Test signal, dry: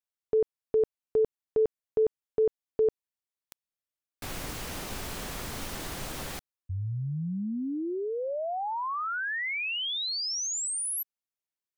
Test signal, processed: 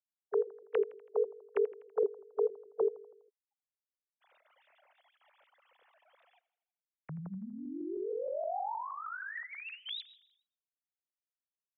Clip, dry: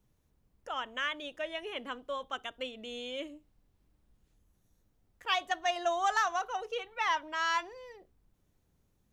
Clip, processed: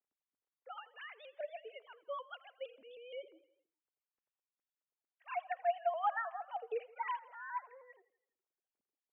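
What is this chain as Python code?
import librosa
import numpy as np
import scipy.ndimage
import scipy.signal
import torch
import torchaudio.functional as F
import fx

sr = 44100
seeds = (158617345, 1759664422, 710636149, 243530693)

p1 = fx.sine_speech(x, sr)
p2 = p1 + fx.echo_feedback(p1, sr, ms=82, feedback_pct=57, wet_db=-19.0, dry=0)
p3 = fx.vibrato_shape(p2, sr, shape='saw_up', rate_hz=6.4, depth_cents=100.0)
y = F.gain(torch.from_numpy(p3), -7.0).numpy()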